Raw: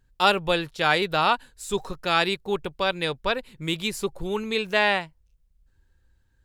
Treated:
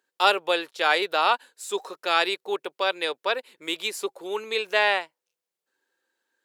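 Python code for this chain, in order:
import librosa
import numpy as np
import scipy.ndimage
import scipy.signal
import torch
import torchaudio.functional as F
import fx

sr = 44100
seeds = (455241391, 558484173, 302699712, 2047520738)

y = scipy.signal.sosfilt(scipy.signal.butter(4, 360.0, 'highpass', fs=sr, output='sos'), x)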